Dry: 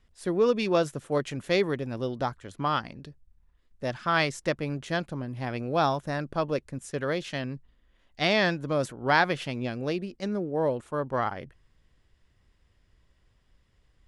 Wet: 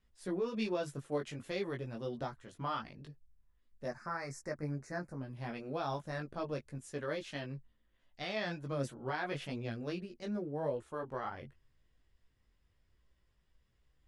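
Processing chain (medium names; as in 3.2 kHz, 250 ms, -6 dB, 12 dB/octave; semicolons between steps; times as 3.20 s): peak limiter -18.5 dBFS, peak gain reduction 10 dB; 3.86–5.21 s: Chebyshev band-stop 1.9–5.2 kHz, order 2; chorus voices 4, 0.4 Hz, delay 18 ms, depth 4.8 ms; trim -6 dB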